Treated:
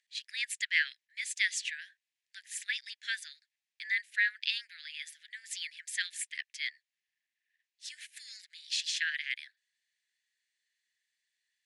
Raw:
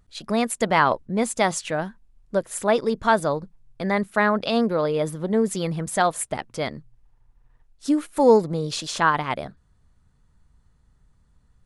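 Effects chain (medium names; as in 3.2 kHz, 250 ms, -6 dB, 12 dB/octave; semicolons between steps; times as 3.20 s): steep high-pass 1.7 kHz 96 dB/octave; distance through air 67 m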